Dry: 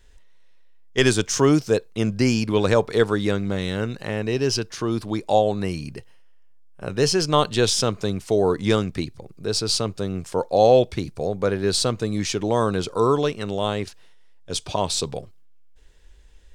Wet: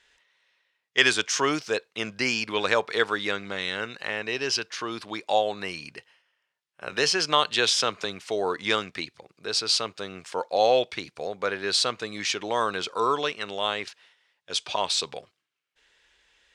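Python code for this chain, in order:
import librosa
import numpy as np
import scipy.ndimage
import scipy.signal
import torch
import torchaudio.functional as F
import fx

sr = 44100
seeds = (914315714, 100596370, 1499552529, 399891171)

y = fx.bandpass_q(x, sr, hz=2300.0, q=0.8)
y = fx.band_squash(y, sr, depth_pct=40, at=(6.92, 8.05))
y = y * 10.0 ** (4.5 / 20.0)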